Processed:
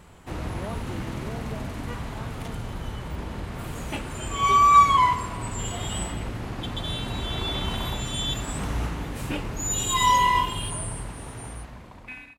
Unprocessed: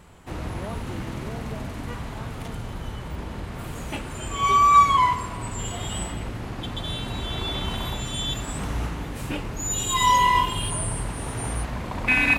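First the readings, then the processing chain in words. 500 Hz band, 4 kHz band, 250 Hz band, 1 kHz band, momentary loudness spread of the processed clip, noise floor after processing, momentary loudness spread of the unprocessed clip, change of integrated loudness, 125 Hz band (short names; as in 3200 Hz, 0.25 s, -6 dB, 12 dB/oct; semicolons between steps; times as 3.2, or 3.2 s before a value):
-1.0 dB, -0.5 dB, -1.0 dB, -0.5 dB, 17 LU, -45 dBFS, 17 LU, -0.5 dB, -1.0 dB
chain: ending faded out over 2.53 s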